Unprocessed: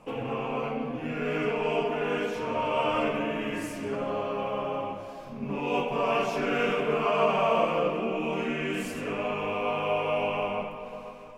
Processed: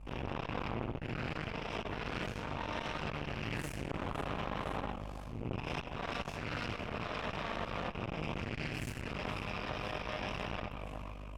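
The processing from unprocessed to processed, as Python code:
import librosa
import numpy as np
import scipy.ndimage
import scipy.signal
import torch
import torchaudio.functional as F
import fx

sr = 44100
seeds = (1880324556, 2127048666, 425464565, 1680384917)

p1 = fx.octave_divider(x, sr, octaves=1, level_db=4.0)
p2 = fx.add_hum(p1, sr, base_hz=50, snr_db=12)
p3 = fx.tone_stack(p2, sr, knobs='5-5-5')
p4 = p3 + fx.echo_wet_highpass(p3, sr, ms=509, feedback_pct=74, hz=5000.0, wet_db=-13.5, dry=0)
p5 = fx.rider(p4, sr, range_db=4, speed_s=0.5)
p6 = fx.cheby_harmonics(p5, sr, harmonics=(8,), levels_db=(-10,), full_scale_db=-23.0)
p7 = fx.high_shelf(p6, sr, hz=2400.0, db=-10.5)
p8 = fx.transformer_sat(p7, sr, knee_hz=570.0)
y = F.gain(torch.from_numpy(p8), 5.0).numpy()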